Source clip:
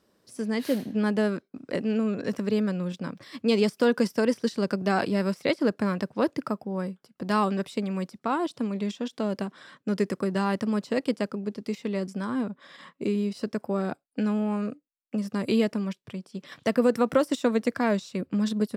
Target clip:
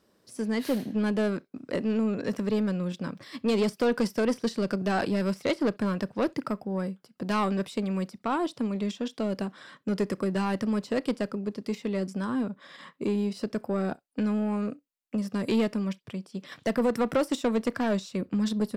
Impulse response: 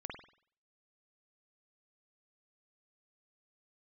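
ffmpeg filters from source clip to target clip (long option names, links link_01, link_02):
-filter_complex "[0:a]asoftclip=type=tanh:threshold=-19dB,asplit=2[link_01][link_02];[1:a]atrim=start_sample=2205,atrim=end_sample=6174,asetrate=66150,aresample=44100[link_03];[link_02][link_03]afir=irnorm=-1:irlink=0,volume=-14dB[link_04];[link_01][link_04]amix=inputs=2:normalize=0"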